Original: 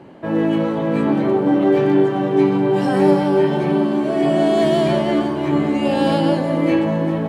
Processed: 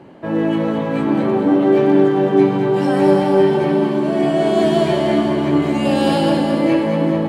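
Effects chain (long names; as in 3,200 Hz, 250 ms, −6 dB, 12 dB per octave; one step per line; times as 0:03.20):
0:05.62–0:06.30: high-shelf EQ 4,600 Hz +7.5 dB
echo with a time of its own for lows and highs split 400 Hz, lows 403 ms, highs 218 ms, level −6 dB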